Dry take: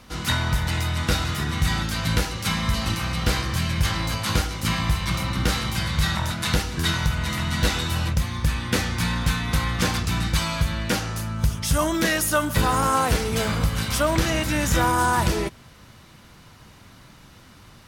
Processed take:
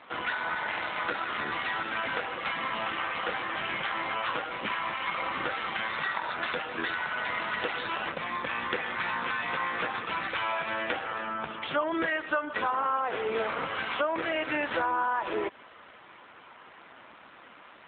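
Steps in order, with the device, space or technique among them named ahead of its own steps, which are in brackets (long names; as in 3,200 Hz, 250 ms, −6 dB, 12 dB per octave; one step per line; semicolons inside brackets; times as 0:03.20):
high-pass filter 200 Hz 12 dB per octave
voicemail (band-pass filter 420–2,800 Hz; downward compressor 8 to 1, threshold −31 dBFS, peak gain reduction 14 dB; level +6.5 dB; AMR narrowband 7.4 kbit/s 8,000 Hz)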